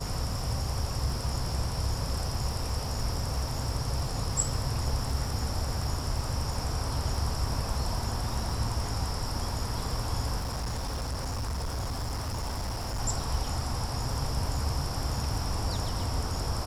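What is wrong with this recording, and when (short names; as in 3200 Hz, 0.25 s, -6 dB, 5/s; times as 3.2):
crackle 70/s -38 dBFS
10.38–13 clipped -29 dBFS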